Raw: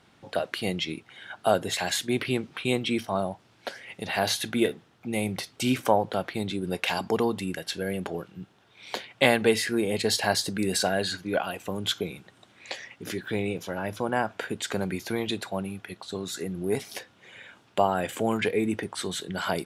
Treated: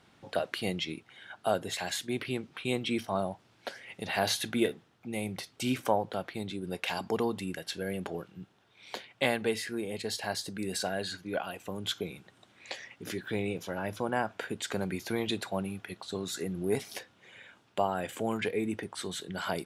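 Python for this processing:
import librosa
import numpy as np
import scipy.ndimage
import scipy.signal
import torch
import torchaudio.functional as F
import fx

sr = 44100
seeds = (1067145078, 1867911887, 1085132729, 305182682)

y = fx.rider(x, sr, range_db=10, speed_s=2.0)
y = y * librosa.db_to_amplitude(-6.5)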